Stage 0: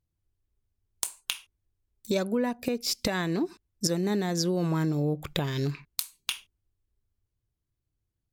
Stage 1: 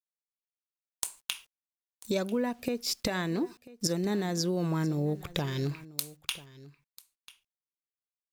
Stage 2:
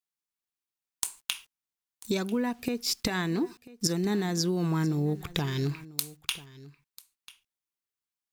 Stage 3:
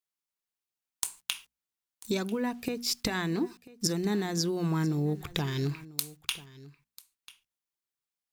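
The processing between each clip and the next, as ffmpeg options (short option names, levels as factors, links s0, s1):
-af "acrusher=bits=9:mix=0:aa=0.000001,aecho=1:1:992:0.106,volume=0.75"
-af "equalizer=f=570:t=o:w=0.3:g=-12.5,volume=1.33"
-af "bandreject=f=60:t=h:w=6,bandreject=f=120:t=h:w=6,bandreject=f=180:t=h:w=6,bandreject=f=240:t=h:w=6,volume=0.891"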